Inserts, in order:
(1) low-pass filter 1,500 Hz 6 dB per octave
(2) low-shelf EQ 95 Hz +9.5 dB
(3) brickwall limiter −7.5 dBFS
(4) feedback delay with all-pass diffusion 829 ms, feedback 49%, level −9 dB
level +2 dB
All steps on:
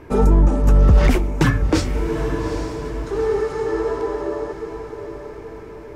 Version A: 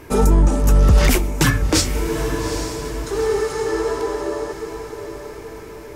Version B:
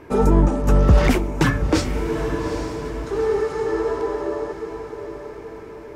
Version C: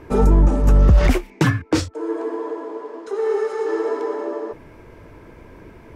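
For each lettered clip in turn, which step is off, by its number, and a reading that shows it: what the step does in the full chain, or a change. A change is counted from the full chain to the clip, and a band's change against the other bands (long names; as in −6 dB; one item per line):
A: 1, 8 kHz band +12.0 dB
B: 2, 125 Hz band −2.5 dB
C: 4, echo-to-direct ratio −8.0 dB to none audible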